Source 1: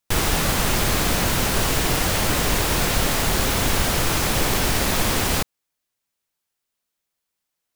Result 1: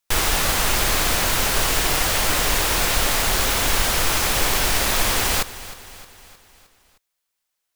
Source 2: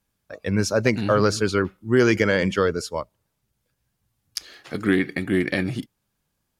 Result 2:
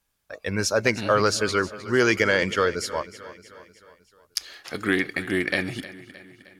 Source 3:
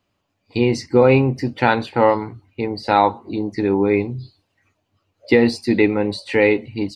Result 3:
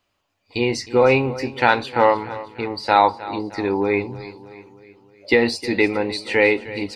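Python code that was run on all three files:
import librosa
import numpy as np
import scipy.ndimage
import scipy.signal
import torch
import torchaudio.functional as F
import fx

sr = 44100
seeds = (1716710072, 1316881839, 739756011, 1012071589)

p1 = fx.peak_eq(x, sr, hz=160.0, db=-10.0, octaves=2.8)
p2 = p1 + fx.echo_feedback(p1, sr, ms=310, feedback_pct=54, wet_db=-16.5, dry=0)
y = p2 * librosa.db_to_amplitude(2.5)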